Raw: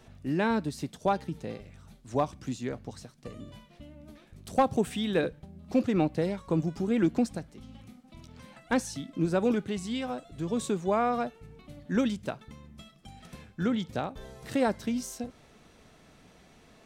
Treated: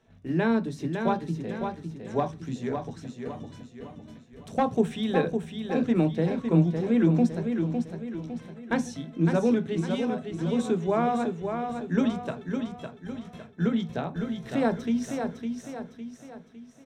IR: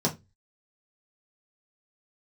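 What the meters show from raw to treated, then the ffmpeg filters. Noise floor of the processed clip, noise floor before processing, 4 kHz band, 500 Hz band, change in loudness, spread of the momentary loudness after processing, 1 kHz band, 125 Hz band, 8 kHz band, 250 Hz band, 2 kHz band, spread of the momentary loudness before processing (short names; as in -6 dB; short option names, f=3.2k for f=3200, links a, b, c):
-51 dBFS, -58 dBFS, -0.5 dB, +2.5 dB, +2.5 dB, 16 LU, +1.0 dB, +6.5 dB, -4.0 dB, +4.5 dB, +1.5 dB, 21 LU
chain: -filter_complex "[0:a]lowpass=f=1.9k:p=1,agate=range=-10dB:threshold=-50dB:ratio=16:detection=peak,tiltshelf=f=1.3k:g=-4,aecho=1:1:557|1114|1671|2228|2785:0.501|0.221|0.097|0.0427|0.0188,asplit=2[a][b];[1:a]atrim=start_sample=2205[c];[b][c]afir=irnorm=-1:irlink=0,volume=-15dB[d];[a][d]amix=inputs=2:normalize=0"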